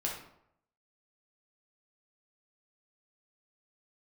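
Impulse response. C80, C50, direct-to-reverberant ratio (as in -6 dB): 8.0 dB, 4.0 dB, -2.5 dB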